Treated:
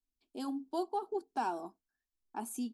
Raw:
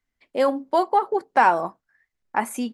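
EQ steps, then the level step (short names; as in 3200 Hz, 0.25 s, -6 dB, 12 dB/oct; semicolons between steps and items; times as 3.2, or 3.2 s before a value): bell 1100 Hz -13.5 dB 1.2 oct; fixed phaser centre 540 Hz, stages 6; -7.5 dB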